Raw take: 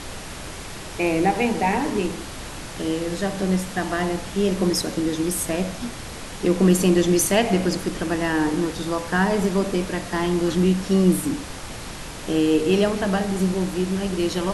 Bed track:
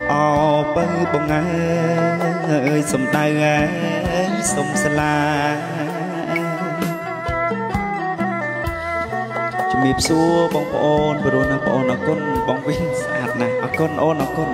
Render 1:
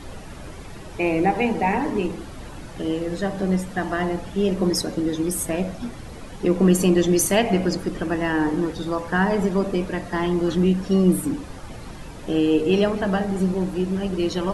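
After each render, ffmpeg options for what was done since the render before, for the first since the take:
-af "afftdn=nr=11:nf=-35"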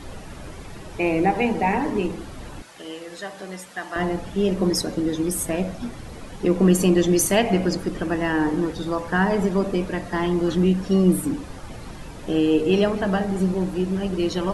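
-filter_complex "[0:a]asettb=1/sr,asplit=3[a][b][c];[a]atrim=end=2.624[d];[b]atrim=start=2.62:end=3.96,asetpts=PTS-STARTPTS,afade=t=in:d=0.004:c=qsin,afade=t=out:st=1.336:d=0.004:c=qsin,highpass=f=1.3k:p=1[e];[c]atrim=start=3.956[f];[d][e]acrossfade=d=0.004:c1=hsin:c2=qsin[g];[g][f]acrossfade=d=0.004:c1=qsin:c2=hsin"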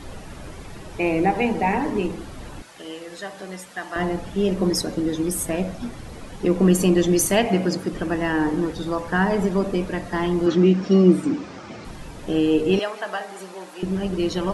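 -filter_complex "[0:a]asettb=1/sr,asplit=3[a][b][c];[a]atrim=end=7.464[d];[b]atrim=start=7.46:end=7.93,asetpts=PTS-STARTPTS,afade=t=in:d=0.004:c=qsin,afade=t=out:st=0.466:d=0.004:c=qsin,highpass=f=100:w=0.5412,highpass=f=100:w=1.3066[e];[c]atrim=start=7.926[f];[d][e]acrossfade=d=0.004:c1=hsin:c2=qsin[g];[g][f]acrossfade=d=0.004:c1=qsin:c2=hsin,asettb=1/sr,asplit=3[h][i][j];[h]atrim=end=10.464[k];[i]atrim=start=10.46:end=11.85,asetpts=PTS-STARTPTS,afade=t=in:d=0.004:c=qsin,afade=t=out:st=1.386:d=0.004:c=qsin,highpass=140,equalizer=f=210:t=q:w=4:g=5,equalizer=f=350:t=q:w=4:g=6,equalizer=f=650:t=q:w=4:g=3,equalizer=f=1.3k:t=q:w=4:g=5,equalizer=f=2.3k:t=q:w=4:g=5,equalizer=f=5.3k:t=q:w=4:g=3,lowpass=f=6.9k:w=0.5412,lowpass=f=6.9k:w=1.3066[l];[j]atrim=start=11.846[m];[k][l]acrossfade=d=0.004:c1=hsin:c2=qsin[n];[n][m]acrossfade=d=0.004:c1=qsin:c2=hsin,asettb=1/sr,asplit=3[o][p][q];[o]atrim=end=12.794[r];[p]atrim=start=12.79:end=13.83,asetpts=PTS-STARTPTS,afade=t=in:d=0.004:c=qsin,afade=t=out:st=1.036:d=0.004:c=qsin,highpass=730[s];[q]atrim=start=13.826[t];[r][s]acrossfade=d=0.004:c1=hsin:c2=qsin[u];[u][t]acrossfade=d=0.004:c1=qsin:c2=hsin"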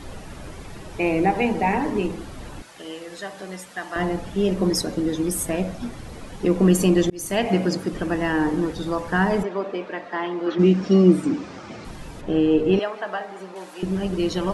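-filter_complex "[0:a]asplit=3[a][b][c];[a]afade=t=out:st=9.42:d=0.02[d];[b]highpass=420,lowpass=3.1k,afade=t=in:st=9.42:d=0.02,afade=t=out:st=10.58:d=0.02[e];[c]afade=t=in:st=10.58:d=0.02[f];[d][e][f]amix=inputs=3:normalize=0,asettb=1/sr,asplit=3[g][h][i];[g]atrim=end=12.214[j];[h]atrim=start=12.21:end=13.56,asetpts=PTS-STARTPTS,afade=t=in:d=0.004:c=qsin,afade=t=out:st=1.346:d=0.004:c=qsin,aemphasis=mode=reproduction:type=75fm[k];[i]atrim=start=13.556[l];[j][k]acrossfade=d=0.004:c1=hsin:c2=qsin[m];[m][l]acrossfade=d=0.004:c1=qsin:c2=hsin,asplit=2[n][o];[n]atrim=end=7.1,asetpts=PTS-STARTPTS,afade=t=out:st=7.096:d=0.004:c=hsin[p];[o]atrim=start=7.1,asetpts=PTS-STARTPTS,afade=t=in:d=0.42[q];[p][q]concat=n=2:v=0:a=1"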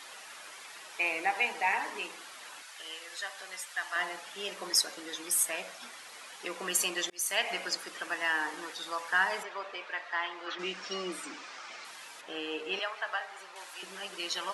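-af "highpass=1.3k"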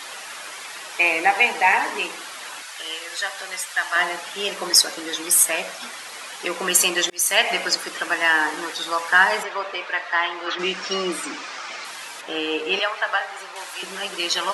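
-af "volume=12dB,alimiter=limit=-1dB:level=0:latency=1"

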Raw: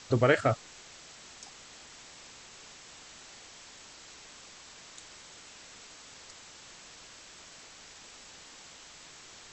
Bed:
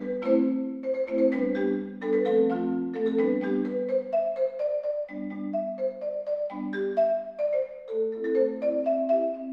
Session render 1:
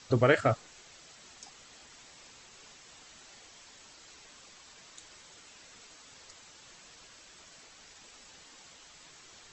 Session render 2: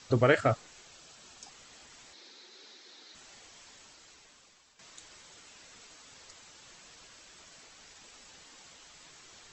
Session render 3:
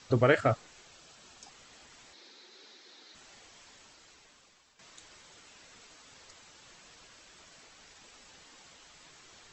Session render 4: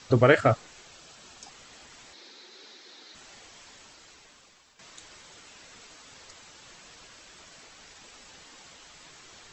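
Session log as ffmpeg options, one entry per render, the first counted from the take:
-af "afftdn=nr=6:nf=-52"
-filter_complex "[0:a]asettb=1/sr,asplit=3[a][b][c];[a]atrim=end=0.864[d];[b]atrim=start=0.86:end=1.49,asetpts=PTS-STARTPTS,afade=t=in:d=0.004:c=qsin,afade=t=out:st=0.626:d=0.004:c=qsin,bandreject=f=2k:w=7.1[e];[c]atrim=start=1.486[f];[d][e]acrossfade=d=0.004:c1=hsin:c2=qsin[g];[g][f]acrossfade=d=0.004:c1=qsin:c2=hsin,asettb=1/sr,asplit=3[h][i][j];[h]atrim=end=2.134[k];[i]atrim=start=2.13:end=3.15,asetpts=PTS-STARTPTS,afade=t=in:d=0.004:c=qsin,afade=t=out:st=1.016:d=0.004:c=qsin,highpass=f=230:w=0.5412,highpass=f=230:w=1.3066,equalizer=f=360:t=q:w=4:g=7,equalizer=f=670:t=q:w=4:g=-5,equalizer=f=1.1k:t=q:w=4:g=-6,equalizer=f=2.8k:t=q:w=4:g=-6,equalizer=f=4k:t=q:w=4:g=9,lowpass=f=5.9k:w=0.5412,lowpass=f=5.9k:w=1.3066[l];[j]atrim=start=3.146[m];[k][l]acrossfade=d=0.004:c1=hsin:c2=qsin[n];[n][m]acrossfade=d=0.004:c1=qsin:c2=hsin,asplit=2[o][p];[o]atrim=end=4.79,asetpts=PTS-STARTPTS,afade=t=out:st=3.71:d=1.08:silence=0.251189[q];[p]atrim=start=4.79,asetpts=PTS-STARTPTS,afade=t=in:d=0.004:c=hsin:silence=0.251189[r];[q][r]concat=n=2:v=0:a=1"
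-af "highshelf=f=5.5k:g=-5"
-af "volume=5dB"

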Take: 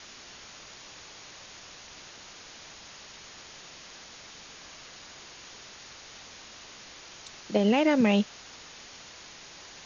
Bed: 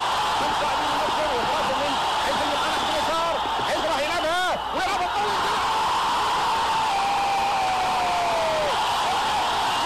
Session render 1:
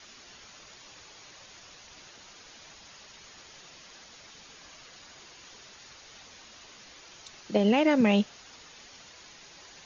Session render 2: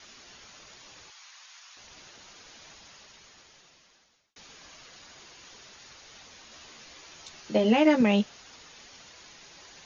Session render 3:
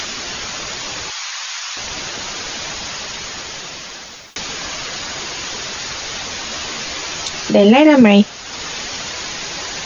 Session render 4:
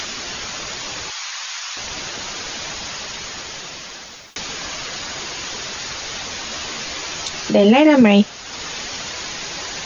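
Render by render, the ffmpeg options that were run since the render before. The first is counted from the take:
-af "afftdn=nr=6:nf=-48"
-filter_complex "[0:a]asettb=1/sr,asplit=3[a][b][c];[a]atrim=end=1.104[d];[b]atrim=start=1.1:end=1.77,asetpts=PTS-STARTPTS,afade=t=in:d=0.004:c=qsin,afade=t=out:st=0.666:d=0.004:c=qsin,highpass=f=900:w=0.5412,highpass=f=900:w=1.3066[e];[c]atrim=start=1.766[f];[d][e]acrossfade=d=0.004:c1=hsin:c2=qsin[g];[g][f]acrossfade=d=0.004:c1=qsin:c2=hsin,asettb=1/sr,asplit=3[h][i][j];[h]atrim=end=6.504[k];[i]atrim=start=6.5:end=8.03,asetpts=PTS-STARTPTS,afade=t=in:d=0.004:c=qsin,afade=t=out:st=1.526:d=0.004:c=qsin,asplit=2[l][m];[m]adelay=13,volume=-4dB[n];[l][n]amix=inputs=2:normalize=0,atrim=end_sample=67473[o];[j]atrim=start=8.026[p];[k][o]acrossfade=d=0.004:c1=hsin:c2=qsin[q];[q][p]acrossfade=d=0.004:c1=qsin:c2=hsin,asplit=2[r][s];[r]atrim=end=4.36,asetpts=PTS-STARTPTS,afade=t=out:st=2.75:d=1.61[t];[s]atrim=start=4.36,asetpts=PTS-STARTPTS,afade=t=in:d=0.004:c=hsin[u];[t][u]concat=n=2:v=0:a=1"
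-filter_complex "[0:a]asplit=2[a][b];[b]acompressor=mode=upward:threshold=-29dB:ratio=2.5,volume=1.5dB[c];[a][c]amix=inputs=2:normalize=0,alimiter=level_in=10.5dB:limit=-1dB:release=50:level=0:latency=1"
-af "volume=-2.5dB"

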